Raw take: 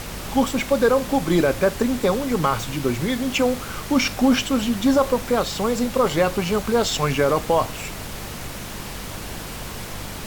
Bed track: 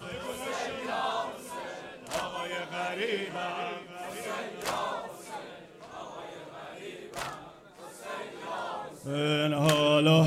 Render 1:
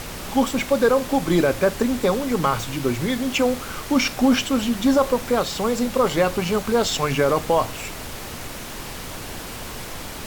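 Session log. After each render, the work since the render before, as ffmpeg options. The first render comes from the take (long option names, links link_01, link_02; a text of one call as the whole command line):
ffmpeg -i in.wav -af "bandreject=frequency=50:width_type=h:width=4,bandreject=frequency=100:width_type=h:width=4,bandreject=frequency=150:width_type=h:width=4,bandreject=frequency=200:width_type=h:width=4" out.wav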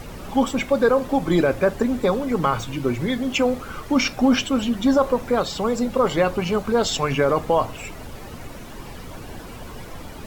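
ffmpeg -i in.wav -af "afftdn=noise_reduction=11:noise_floor=-34" out.wav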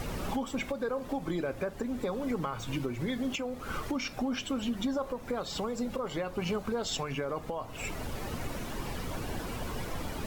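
ffmpeg -i in.wav -af "acompressor=threshold=-27dB:ratio=6,alimiter=limit=-23dB:level=0:latency=1:release=464" out.wav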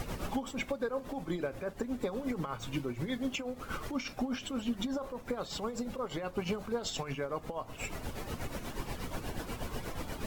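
ffmpeg -i in.wav -af "tremolo=f=8.3:d=0.61" out.wav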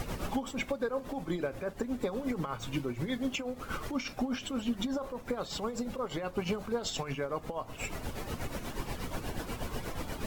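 ffmpeg -i in.wav -af "volume=1.5dB" out.wav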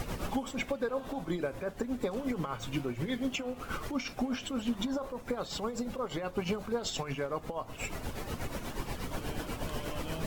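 ffmpeg -i in.wav -i bed.wav -filter_complex "[1:a]volume=-21dB[link_01];[0:a][link_01]amix=inputs=2:normalize=0" out.wav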